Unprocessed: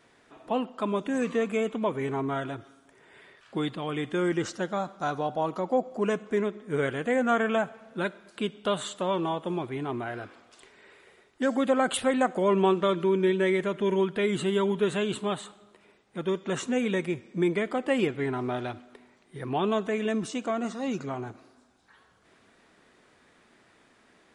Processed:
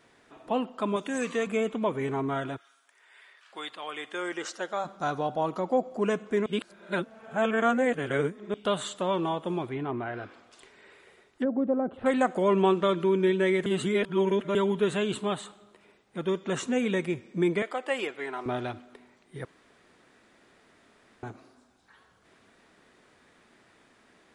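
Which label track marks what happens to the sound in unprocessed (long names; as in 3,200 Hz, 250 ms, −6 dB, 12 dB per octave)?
0.960000	1.470000	spectral tilt +2 dB per octave
2.560000	4.840000	high-pass filter 1,500 Hz → 420 Hz
6.460000	8.540000	reverse
9.670000	12.060000	treble cut that deepens with the level closes to 520 Hz, closed at −23 dBFS
13.660000	14.550000	reverse
17.620000	18.460000	high-pass filter 550 Hz
19.450000	21.230000	fill with room tone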